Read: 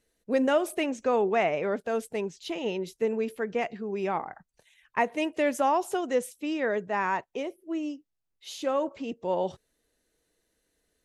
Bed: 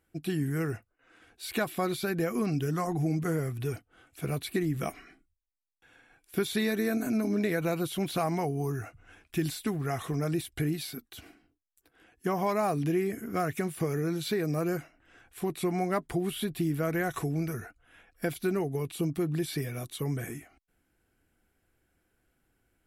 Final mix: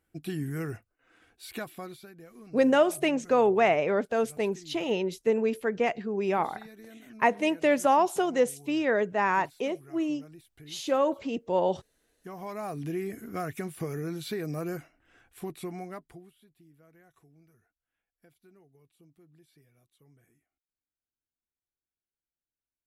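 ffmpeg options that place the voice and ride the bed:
ffmpeg -i stem1.wav -i stem2.wav -filter_complex "[0:a]adelay=2250,volume=2.5dB[link_01];[1:a]volume=13.5dB,afade=type=out:start_time=1.19:duration=0.93:silence=0.133352,afade=type=in:start_time=12.07:duration=1:silence=0.149624,afade=type=out:start_time=15.26:duration=1.07:silence=0.0501187[link_02];[link_01][link_02]amix=inputs=2:normalize=0" out.wav

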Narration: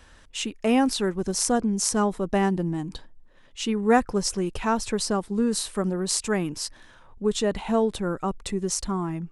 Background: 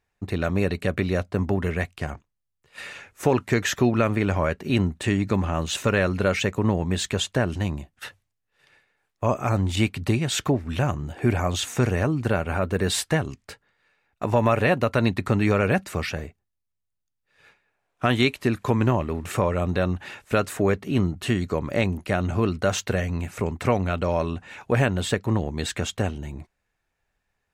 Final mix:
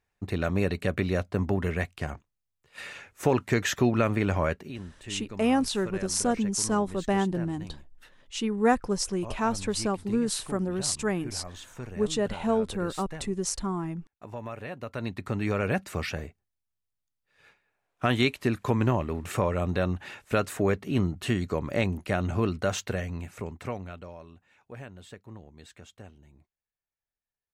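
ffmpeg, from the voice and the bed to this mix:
ffmpeg -i stem1.wav -i stem2.wav -filter_complex "[0:a]adelay=4750,volume=-3dB[link_01];[1:a]volume=11.5dB,afade=type=out:start_time=4.53:duration=0.2:silence=0.177828,afade=type=in:start_time=14.73:duration=1.36:silence=0.188365,afade=type=out:start_time=22.41:duration=1.76:silence=0.11885[link_02];[link_01][link_02]amix=inputs=2:normalize=0" out.wav

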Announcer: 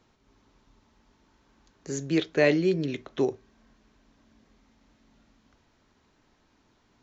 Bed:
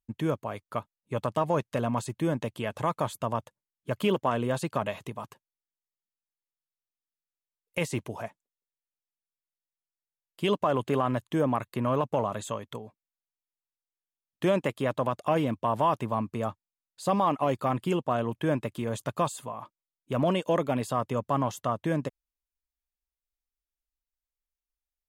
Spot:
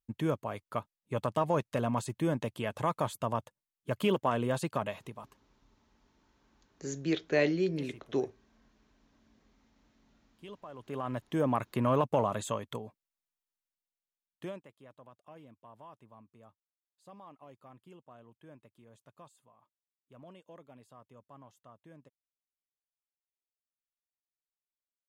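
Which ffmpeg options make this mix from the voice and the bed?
ffmpeg -i stem1.wav -i stem2.wav -filter_complex "[0:a]adelay=4950,volume=-5.5dB[link_01];[1:a]volume=18.5dB,afade=type=out:start_time=4.65:duration=0.99:silence=0.112202,afade=type=in:start_time=10.76:duration=0.95:silence=0.0891251,afade=type=out:start_time=13.41:duration=1.23:silence=0.0473151[link_02];[link_01][link_02]amix=inputs=2:normalize=0" out.wav

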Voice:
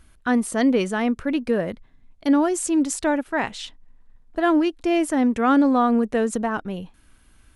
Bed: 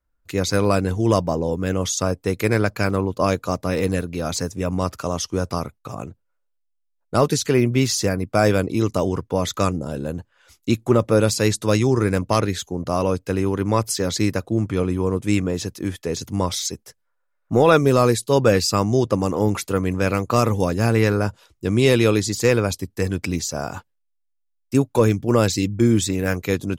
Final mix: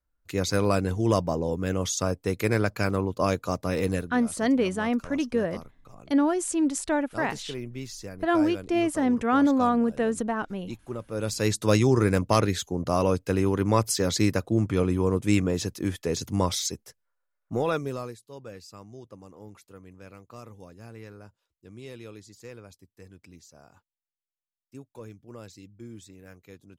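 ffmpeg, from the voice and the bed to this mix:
ffmpeg -i stem1.wav -i stem2.wav -filter_complex "[0:a]adelay=3850,volume=-4dB[link_01];[1:a]volume=11dB,afade=type=out:start_time=3.95:duration=0.25:silence=0.211349,afade=type=in:start_time=11.11:duration=0.58:silence=0.158489,afade=type=out:start_time=16.42:duration=1.76:silence=0.0630957[link_02];[link_01][link_02]amix=inputs=2:normalize=0" out.wav

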